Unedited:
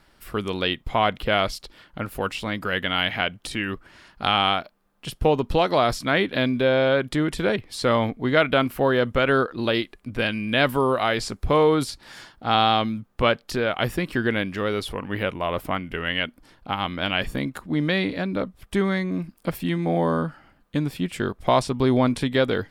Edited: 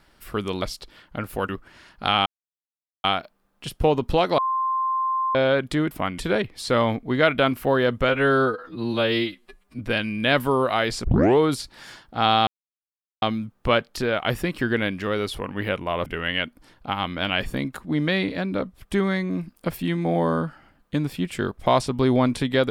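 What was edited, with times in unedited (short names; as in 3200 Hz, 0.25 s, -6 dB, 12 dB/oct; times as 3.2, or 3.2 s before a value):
0.62–1.44 cut
2.31–3.68 cut
4.45 insert silence 0.78 s
5.79–6.76 bleep 1050 Hz -20.5 dBFS
9.23–10.08 stretch 2×
11.33 tape start 0.34 s
12.76 insert silence 0.75 s
15.6–15.87 move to 7.32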